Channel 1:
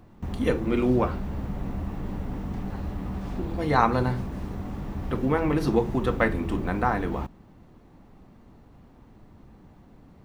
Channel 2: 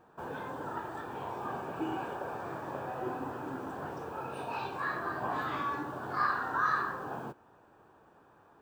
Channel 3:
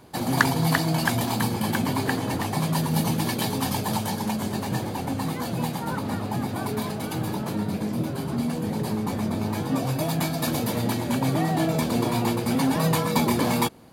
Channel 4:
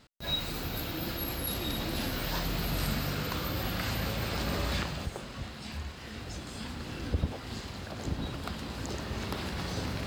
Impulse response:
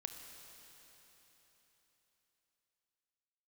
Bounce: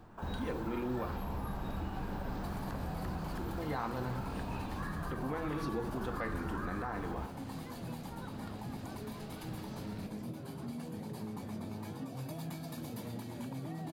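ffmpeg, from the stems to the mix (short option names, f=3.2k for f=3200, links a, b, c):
-filter_complex "[0:a]volume=-5.5dB,asplit=2[a][b];[b]volume=-13.5dB[c];[1:a]highpass=490,volume=0dB[d];[2:a]acrossover=split=350[e][f];[f]acompressor=threshold=-31dB:ratio=6[g];[e][g]amix=inputs=2:normalize=0,adelay=2300,volume=-14.5dB[h];[3:a]volume=-17dB[i];[a][h]amix=inputs=2:normalize=0,alimiter=level_in=8.5dB:limit=-24dB:level=0:latency=1:release=148,volume=-8.5dB,volume=0dB[j];[d][i]amix=inputs=2:normalize=0,acompressor=threshold=-43dB:ratio=6,volume=0dB[k];[4:a]atrim=start_sample=2205[l];[c][l]afir=irnorm=-1:irlink=0[m];[j][k][m]amix=inputs=3:normalize=0"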